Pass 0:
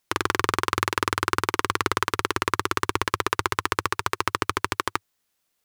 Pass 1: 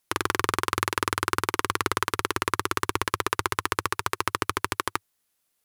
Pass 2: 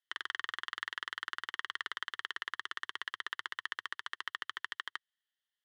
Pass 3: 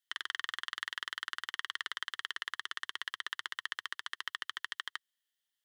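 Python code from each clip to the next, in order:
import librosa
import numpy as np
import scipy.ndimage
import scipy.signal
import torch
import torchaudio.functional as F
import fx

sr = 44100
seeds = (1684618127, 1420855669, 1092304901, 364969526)

y1 = fx.peak_eq(x, sr, hz=11000.0, db=6.5, octaves=0.59)
y1 = y1 * 10.0 ** (-2.0 / 20.0)
y2 = fx.double_bandpass(y1, sr, hz=2400.0, octaves=0.75)
y2 = y2 * 10.0 ** (-3.0 / 20.0)
y3 = fx.high_shelf(y2, sr, hz=2800.0, db=10.0)
y3 = y3 * 10.0 ** (-3.0 / 20.0)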